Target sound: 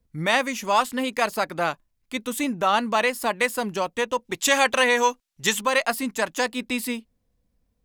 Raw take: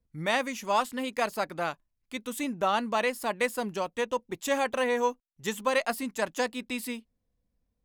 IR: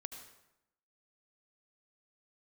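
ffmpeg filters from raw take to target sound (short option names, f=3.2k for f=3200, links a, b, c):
-filter_complex "[0:a]acrossover=split=800[a][b];[a]alimiter=level_in=3dB:limit=-24dB:level=0:latency=1:release=190,volume=-3dB[c];[c][b]amix=inputs=2:normalize=0,asplit=3[d][e][f];[d]afade=t=out:st=4.24:d=0.02[g];[e]equalizer=f=4.7k:w=0.31:g=7.5,afade=t=in:st=4.24:d=0.02,afade=t=out:st=5.6:d=0.02[h];[f]afade=t=in:st=5.6:d=0.02[i];[g][h][i]amix=inputs=3:normalize=0,volume=7dB"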